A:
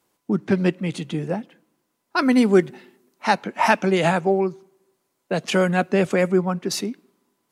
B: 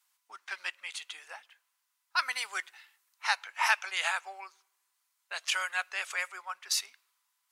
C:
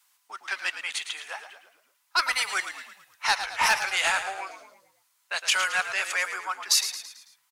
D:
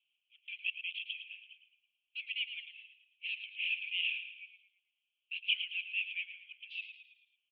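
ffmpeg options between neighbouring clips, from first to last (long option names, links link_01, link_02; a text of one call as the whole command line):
ffmpeg -i in.wav -af "highpass=frequency=990:width=0.5412,highpass=frequency=990:width=1.3066,tiltshelf=frequency=1300:gain=-4,volume=-5.5dB" out.wav
ffmpeg -i in.wav -filter_complex "[0:a]acrossover=split=630|3800[link_01][link_02][link_03];[link_02]asoftclip=type=tanh:threshold=-28dB[link_04];[link_01][link_04][link_03]amix=inputs=3:normalize=0,asplit=6[link_05][link_06][link_07][link_08][link_09][link_10];[link_06]adelay=110,afreqshift=-53,volume=-10dB[link_11];[link_07]adelay=220,afreqshift=-106,volume=-16.6dB[link_12];[link_08]adelay=330,afreqshift=-159,volume=-23.1dB[link_13];[link_09]adelay=440,afreqshift=-212,volume=-29.7dB[link_14];[link_10]adelay=550,afreqshift=-265,volume=-36.2dB[link_15];[link_05][link_11][link_12][link_13][link_14][link_15]amix=inputs=6:normalize=0,volume=8.5dB" out.wav
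ffmpeg -i in.wav -af "asoftclip=type=hard:threshold=-17.5dB,asuperpass=centerf=2800:order=8:qfactor=3.2,volume=-3dB" out.wav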